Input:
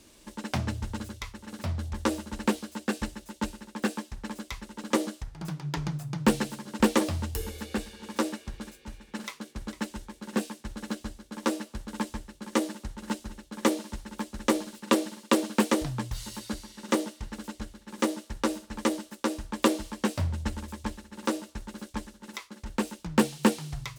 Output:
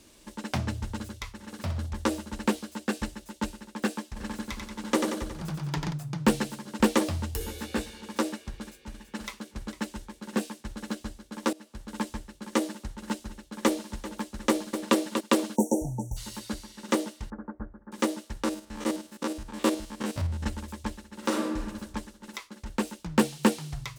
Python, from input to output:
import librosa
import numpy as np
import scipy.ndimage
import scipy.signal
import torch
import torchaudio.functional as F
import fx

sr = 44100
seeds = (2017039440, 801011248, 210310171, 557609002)

y = fx.room_flutter(x, sr, wall_m=10.7, rt60_s=0.39, at=(1.38, 1.85), fade=0.02)
y = fx.echo_feedback(y, sr, ms=91, feedback_pct=58, wet_db=-4.5, at=(4.15, 5.92), fade=0.02)
y = fx.doubler(y, sr, ms=17.0, db=-2, at=(7.39, 8.01))
y = fx.echo_throw(y, sr, start_s=8.61, length_s=0.45, ms=330, feedback_pct=35, wet_db=-8.0)
y = fx.echo_throw(y, sr, start_s=13.27, length_s=0.63, ms=390, feedback_pct=15, wet_db=-15.5)
y = fx.echo_throw(y, sr, start_s=14.49, length_s=0.47, ms=240, feedback_pct=15, wet_db=-7.0)
y = fx.brickwall_bandstop(y, sr, low_hz=940.0, high_hz=5600.0, at=(15.55, 16.16), fade=0.02)
y = fx.steep_lowpass(y, sr, hz=1600.0, slope=48, at=(17.3, 17.92))
y = fx.spec_steps(y, sr, hold_ms=50, at=(18.43, 20.44), fade=0.02)
y = fx.reverb_throw(y, sr, start_s=21.17, length_s=0.47, rt60_s=1.1, drr_db=-1.0)
y = fx.edit(y, sr, fx.fade_in_from(start_s=11.53, length_s=0.44, floor_db=-19.5), tone=tone)